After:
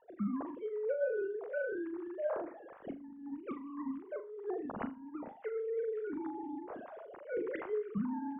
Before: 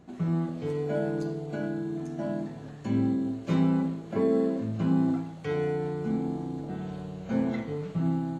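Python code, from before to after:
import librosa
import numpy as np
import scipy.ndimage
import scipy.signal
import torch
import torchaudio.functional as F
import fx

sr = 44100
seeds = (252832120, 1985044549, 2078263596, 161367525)

y = fx.sine_speech(x, sr)
y = fx.over_compress(y, sr, threshold_db=-29.0, ratio=-0.5)
y = scipy.signal.sosfilt(scipy.signal.butter(2, 1400.0, 'lowpass', fs=sr, output='sos'), y)
y = fx.peak_eq(y, sr, hz=310.0, db=-11.5, octaves=1.1)
y = fx.room_flutter(y, sr, wall_m=6.9, rt60_s=0.25)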